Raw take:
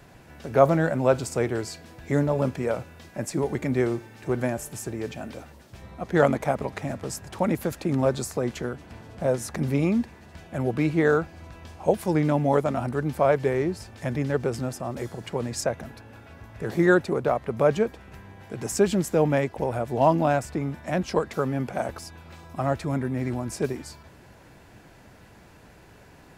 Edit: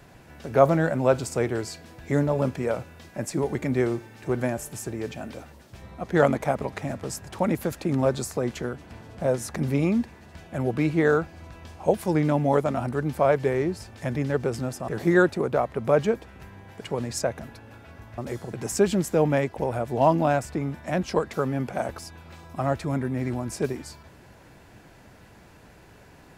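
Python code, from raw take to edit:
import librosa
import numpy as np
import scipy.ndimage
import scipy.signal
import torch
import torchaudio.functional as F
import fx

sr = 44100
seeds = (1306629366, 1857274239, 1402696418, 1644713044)

y = fx.edit(x, sr, fx.swap(start_s=14.88, length_s=0.35, other_s=16.6, other_length_s=1.93), tone=tone)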